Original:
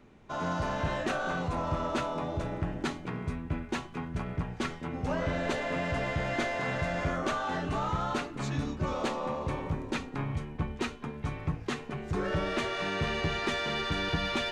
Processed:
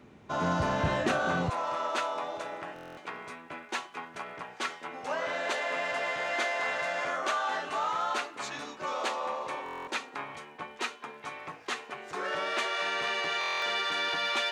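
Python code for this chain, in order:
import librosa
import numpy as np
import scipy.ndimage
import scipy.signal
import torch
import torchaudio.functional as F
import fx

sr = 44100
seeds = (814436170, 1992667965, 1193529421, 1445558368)

y = fx.highpass(x, sr, hz=fx.steps((0.0, 78.0), (1.5, 660.0)), slope=12)
y = fx.buffer_glitch(y, sr, at_s=(2.74, 9.64, 13.39), block=1024, repeats=9)
y = y * 10.0 ** (3.5 / 20.0)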